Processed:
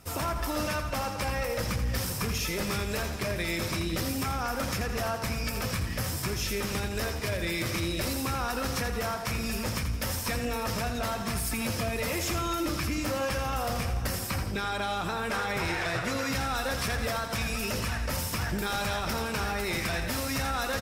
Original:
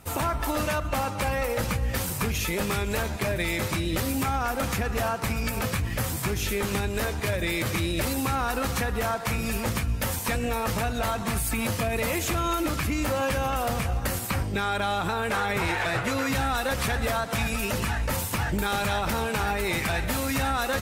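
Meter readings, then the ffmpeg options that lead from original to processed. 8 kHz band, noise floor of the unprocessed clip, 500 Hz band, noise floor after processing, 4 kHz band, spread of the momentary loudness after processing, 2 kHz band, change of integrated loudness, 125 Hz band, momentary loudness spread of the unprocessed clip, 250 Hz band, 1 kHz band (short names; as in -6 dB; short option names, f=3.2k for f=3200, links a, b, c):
-2.5 dB, -32 dBFS, -4.0 dB, -34 dBFS, -1.0 dB, 2 LU, -3.5 dB, -3.5 dB, -3.5 dB, 2 LU, -3.5 dB, -4.5 dB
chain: -filter_complex "[0:a]equalizer=f=5.3k:t=o:w=0.24:g=10,bandreject=f=850:w=12,asplit=2[a][b];[b]aecho=0:1:83|166|249|332|415:0.376|0.169|0.0761|0.0342|0.0154[c];[a][c]amix=inputs=2:normalize=0,asoftclip=type=tanh:threshold=-16dB,volume=-3.5dB"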